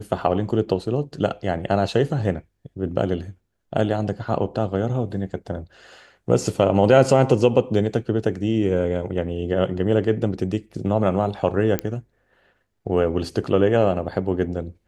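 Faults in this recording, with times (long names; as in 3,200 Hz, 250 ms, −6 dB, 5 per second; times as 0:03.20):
0:11.79: click −8 dBFS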